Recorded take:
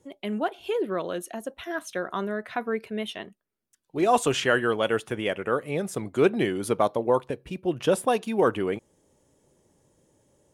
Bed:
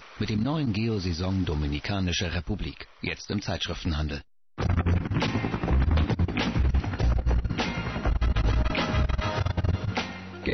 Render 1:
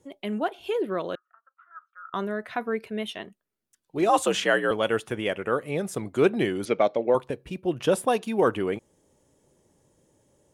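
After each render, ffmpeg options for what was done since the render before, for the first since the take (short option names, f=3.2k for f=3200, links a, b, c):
-filter_complex "[0:a]asettb=1/sr,asplit=3[a][b][c];[a]atrim=end=1.154[d];[b]atrim=start=1.15:end=2.14,asetpts=PTS-STARTPTS,afade=t=in:d=0.004:c=qsin,afade=t=out:st=0.986:d=0.004:c=qsin,asuperpass=centerf=1300:order=4:qfactor=6.3[e];[c]atrim=start=2.136[f];[d][e]acrossfade=d=0.004:c1=hsin:c2=qsin[g];[g][f]acrossfade=d=0.004:c1=qsin:c2=hsin,asettb=1/sr,asplit=3[h][i][j];[h]atrim=end=4.094[k];[i]atrim=start=4.09:end=4.71,asetpts=PTS-STARTPTS,afade=t=in:d=0.004:c=qsin,afade=t=out:st=0.616:d=0.004:c=qsin,afreqshift=61[l];[j]atrim=start=4.706[m];[k][l]acrossfade=d=0.004:c1=hsin:c2=qsin[n];[n][m]acrossfade=d=0.004:c1=qsin:c2=hsin,asettb=1/sr,asplit=3[o][p][q];[o]atrim=end=6.654[r];[p]atrim=start=6.65:end=7.15,asetpts=PTS-STARTPTS,afade=t=in:d=0.004:c=qsin,afade=t=out:st=0.496:d=0.004:c=qsin,highpass=180,equalizer=f=600:t=q:w=4:g=4,equalizer=f=1k:t=q:w=4:g=-9,equalizer=f=2.2k:t=q:w=4:g=10,lowpass=f=6.1k:w=0.5412,lowpass=f=6.1k:w=1.3066[s];[q]atrim=start=7.146[t];[r][s]acrossfade=d=0.004:c1=hsin:c2=qsin[u];[u][t]acrossfade=d=0.004:c1=qsin:c2=hsin"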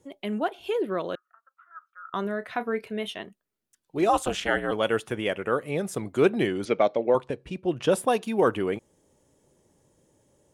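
-filter_complex "[0:a]asettb=1/sr,asplit=3[a][b][c];[a]atrim=end=2.224[d];[b]atrim=start=2.22:end=3.14,asetpts=PTS-STARTPTS,afade=t=in:d=0.004:c=qsin,afade=t=out:st=0.916:d=0.004:c=qsin,asplit=2[e][f];[f]adelay=30,volume=-13dB[g];[e][g]amix=inputs=2:normalize=0,atrim=end_sample=40572[h];[c]atrim=start=3.136[i];[d][h]acrossfade=d=0.004:c1=hsin:c2=qsin[j];[j][i]acrossfade=d=0.004:c1=qsin:c2=hsin,asplit=3[k][l][m];[k]afade=t=out:st=4.12:d=0.02[n];[l]tremolo=f=240:d=1,afade=t=in:st=4.12:d=0.02,afade=t=out:st=4.71:d=0.02[o];[m]afade=t=in:st=4.71:d=0.02[p];[n][o][p]amix=inputs=3:normalize=0,asettb=1/sr,asplit=3[q][r][s];[q]atrim=end=6.474[t];[r]atrim=start=6.47:end=7.9,asetpts=PTS-STARTPTS,afade=t=in:d=0.004:c=qsin,afade=t=out:st=1.426:d=0.004:c=qsin,lowpass=8.4k[u];[s]atrim=start=7.896[v];[t][u]acrossfade=d=0.004:c1=hsin:c2=qsin[w];[w][v]acrossfade=d=0.004:c1=qsin:c2=hsin"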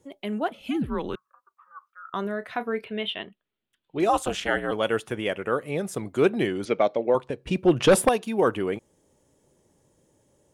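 -filter_complex "[0:a]asettb=1/sr,asplit=3[a][b][c];[a]atrim=end=0.504[d];[b]atrim=start=0.5:end=1.9,asetpts=PTS-STARTPTS,afade=t=in:d=0.004:c=qsin,afade=t=out:st=1.396:d=0.004:c=qsin,afreqshift=-150[e];[c]atrim=start=1.896[f];[d][e]acrossfade=d=0.004:c1=hsin:c2=qsin[g];[g][f]acrossfade=d=0.004:c1=qsin:c2=hsin,asettb=1/sr,asplit=3[h][i][j];[h]atrim=end=2.844[k];[i]atrim=start=2.84:end=4,asetpts=PTS-STARTPTS,afade=t=in:d=0.004:c=qsin,afade=t=out:st=1.156:d=0.004:c=qsin,highshelf=f=4.5k:t=q:w=3:g=-11.5[l];[j]atrim=start=3.996[m];[k][l]acrossfade=d=0.004:c1=hsin:c2=qsin[n];[n][m]acrossfade=d=0.004:c1=qsin:c2=hsin,asettb=1/sr,asplit=3[o][p][q];[o]atrim=end=7.474[r];[p]atrim=start=7.47:end=8.09,asetpts=PTS-STARTPTS,afade=t=in:d=0.004:c=qsin,afade=t=out:st=0.616:d=0.004:c=qsin,aeval=exprs='0.299*sin(PI/2*1.78*val(0)/0.299)':c=same[s];[q]atrim=start=8.086[t];[r][s]acrossfade=d=0.004:c1=hsin:c2=qsin[u];[u][t]acrossfade=d=0.004:c1=qsin:c2=hsin"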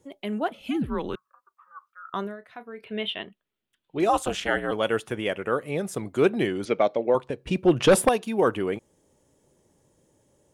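-filter_complex "[0:a]asplit=3[a][b][c];[a]atrim=end=2.37,asetpts=PTS-STARTPTS,afade=t=out:st=2.19:d=0.18:silence=0.251189[d];[b]atrim=start=2.37:end=2.77,asetpts=PTS-STARTPTS,volume=-12dB[e];[c]atrim=start=2.77,asetpts=PTS-STARTPTS,afade=t=in:d=0.18:silence=0.251189[f];[d][e][f]concat=n=3:v=0:a=1"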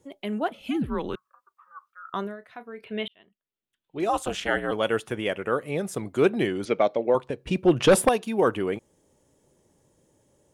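-filter_complex "[0:a]asplit=2[a][b];[a]atrim=end=3.08,asetpts=PTS-STARTPTS,afade=t=out:st=3.076:d=0.004:c=hsin[c];[b]atrim=start=3.08,asetpts=PTS-STARTPTS,afade=t=in:d=1.47[d];[c][d]concat=n=2:v=0:a=1"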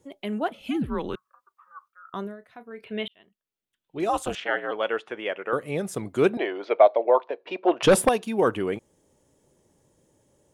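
-filter_complex "[0:a]asettb=1/sr,asplit=3[a][b][c];[a]atrim=end=1.884[d];[b]atrim=start=1.88:end=2.71,asetpts=PTS-STARTPTS,afade=t=in:d=0.004:c=qsin,afade=t=out:st=0.826:d=0.004:c=qsin,equalizer=f=2k:w=0.32:g=-5.5[e];[c]atrim=start=2.706[f];[d][e]acrossfade=d=0.004:c1=hsin:c2=qsin[g];[g][f]acrossfade=d=0.004:c1=qsin:c2=hsin,asettb=1/sr,asplit=3[h][i][j];[h]atrim=end=4.354[k];[i]atrim=start=4.35:end=5.53,asetpts=PTS-STARTPTS,afade=t=in:d=0.004:c=qsin,afade=t=out:st=1.176:d=0.004:c=qsin,highpass=420,lowpass=3.2k[l];[j]atrim=start=5.526[m];[k][l]acrossfade=d=0.004:c1=hsin:c2=qsin[n];[n][m]acrossfade=d=0.004:c1=qsin:c2=hsin,asettb=1/sr,asplit=3[o][p][q];[o]atrim=end=6.374[r];[p]atrim=start=6.37:end=7.83,asetpts=PTS-STARTPTS,afade=t=in:d=0.004:c=qsin,afade=t=out:st=1.456:d=0.004:c=qsin,highpass=f=370:w=0.5412,highpass=f=370:w=1.3066,equalizer=f=670:t=q:w=4:g=9,equalizer=f=970:t=q:w=4:g=7,equalizer=f=3k:t=q:w=4:g=-3,lowpass=f=4k:w=0.5412,lowpass=f=4k:w=1.3066[s];[q]atrim=start=7.826[t];[r][s]acrossfade=d=0.004:c1=hsin:c2=qsin[u];[u][t]acrossfade=d=0.004:c1=qsin:c2=hsin"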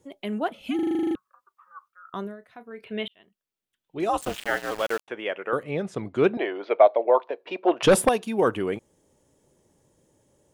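-filter_complex "[0:a]asettb=1/sr,asplit=3[a][b][c];[a]atrim=end=4.214[d];[b]atrim=start=4.21:end=5.08,asetpts=PTS-STARTPTS,afade=t=in:d=0.004:c=qsin,afade=t=out:st=0.866:d=0.004:c=qsin,aeval=exprs='val(0)*gte(abs(val(0)),0.0266)':c=same[e];[c]atrim=start=5.076[f];[d][e]acrossfade=d=0.004:c1=hsin:c2=qsin[g];[g][f]acrossfade=d=0.004:c1=qsin:c2=hsin,asettb=1/sr,asplit=3[h][i][j];[h]atrim=end=5.634[k];[i]atrim=start=5.63:end=7.1,asetpts=PTS-STARTPTS,afade=t=in:d=0.004:c=qsin,afade=t=out:st=1.466:d=0.004:c=qsin,lowpass=4.2k[l];[j]atrim=start=7.096[m];[k][l]acrossfade=d=0.004:c1=hsin:c2=qsin[n];[n][m]acrossfade=d=0.004:c1=qsin:c2=hsin,asplit=11[o][p][q][r][s][t][u][v][w][x][y];[o]atrim=end=0.792[z];[p]atrim=start=0.748:end=0.792[aa];[q]atrim=start=0.748:end=0.792[ab];[r]atrim=start=0.748:end=0.792[ac];[s]atrim=start=0.748:end=0.792[ad];[t]atrim=start=0.748:end=0.792[ae];[u]atrim=start=0.748:end=0.792[af];[v]atrim=start=0.748:end=0.792[ag];[w]atrim=start=0.748:end=0.792[ah];[x]atrim=start=0.748:end=0.792[ai];[y]atrim=start=1.148[aj];[z][aa]acrossfade=d=0.004:c1=hsin:c2=hsin[ak];[ak][ab]acrossfade=d=0.004:c1=hsin:c2=hsin[al];[al][ac]acrossfade=d=0.004:c1=hsin:c2=hsin[am];[am][ad]acrossfade=d=0.004:c1=hsin:c2=hsin[an];[an][ae]acrossfade=d=0.004:c1=hsin:c2=hsin[ao];[ao][af]acrossfade=d=0.004:c1=hsin:c2=hsin[ap];[ap][ag]acrossfade=d=0.004:c1=hsin:c2=hsin[aq];[aq][ah]acrossfade=d=0.004:c1=hsin:c2=hsin[ar];[ar][ai]acrossfade=d=0.004:c1=hsin:c2=hsin[as];[as][aj]acrossfade=d=0.004:c1=hsin:c2=hsin"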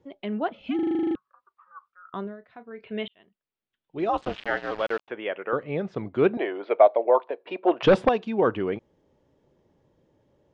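-af "lowpass=f=4.8k:w=0.5412,lowpass=f=4.8k:w=1.3066,highshelf=f=3.4k:g=-7.5"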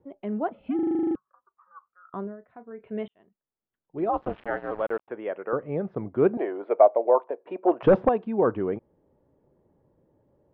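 -af "lowpass=1.2k"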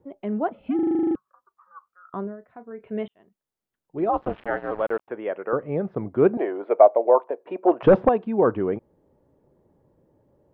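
-af "volume=3dB"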